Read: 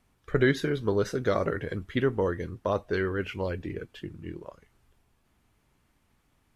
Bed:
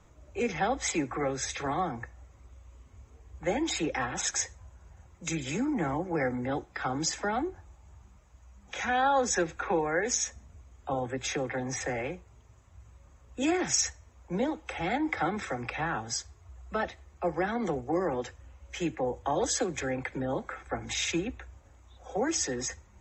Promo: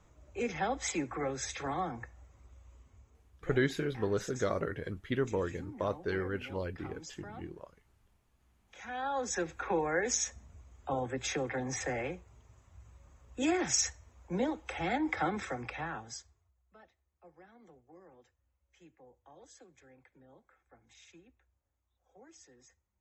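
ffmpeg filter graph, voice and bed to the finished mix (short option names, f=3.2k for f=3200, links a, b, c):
-filter_complex "[0:a]adelay=3150,volume=-6dB[a];[1:a]volume=11dB,afade=t=out:st=2.73:d=0.71:silence=0.211349,afade=t=in:st=8.72:d=1.16:silence=0.16788,afade=t=out:st=15.33:d=1.2:silence=0.0530884[b];[a][b]amix=inputs=2:normalize=0"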